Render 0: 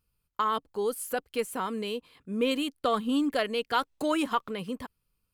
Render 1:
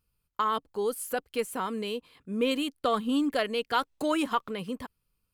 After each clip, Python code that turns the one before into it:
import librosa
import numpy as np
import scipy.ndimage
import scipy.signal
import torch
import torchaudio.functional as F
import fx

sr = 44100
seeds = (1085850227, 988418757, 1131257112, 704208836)

y = x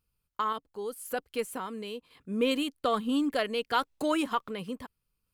y = fx.tremolo_random(x, sr, seeds[0], hz=1.9, depth_pct=55)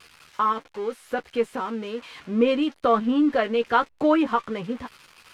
y = x + 0.5 * 10.0 ** (-27.5 / 20.0) * np.diff(np.sign(x), prepend=np.sign(x[:1]))
y = scipy.signal.sosfilt(scipy.signal.butter(2, 2000.0, 'lowpass', fs=sr, output='sos'), y)
y = fx.doubler(y, sr, ms=13.0, db=-6.5)
y = y * 10.0 ** (6.5 / 20.0)